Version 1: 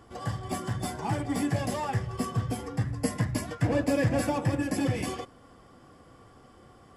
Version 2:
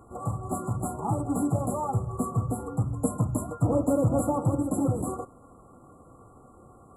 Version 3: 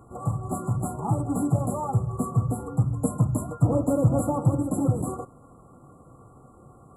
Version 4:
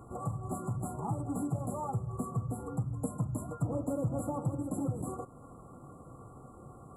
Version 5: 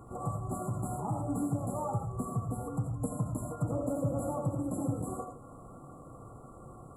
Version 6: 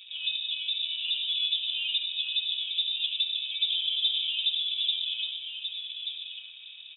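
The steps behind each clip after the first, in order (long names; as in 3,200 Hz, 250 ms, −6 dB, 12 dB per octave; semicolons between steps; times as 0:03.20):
brick-wall band-stop 1,400–7,000 Hz; level +2 dB
parametric band 140 Hz +6.5 dB 0.71 octaves
downward compressor 2 to 1, threshold −39 dBFS, peak gain reduction 13.5 dB
convolution reverb RT60 0.25 s, pre-delay 45 ms, DRR 2 dB
in parallel at −7 dB: dead-zone distortion −52.5 dBFS; on the sum: single-tap delay 1,183 ms −7.5 dB; voice inversion scrambler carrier 3,700 Hz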